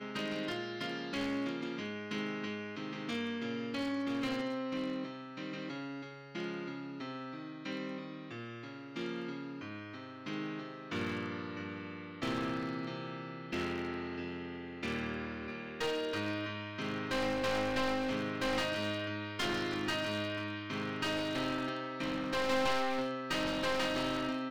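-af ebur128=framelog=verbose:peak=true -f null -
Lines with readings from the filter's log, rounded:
Integrated loudness:
  I:         -37.1 LUFS
  Threshold: -47.1 LUFS
Loudness range:
  LRA:         8.1 LU
  Threshold: -57.4 LUFS
  LRA low:   -42.4 LUFS
  LRA high:  -34.3 LUFS
True peak:
  Peak:      -18.4 dBFS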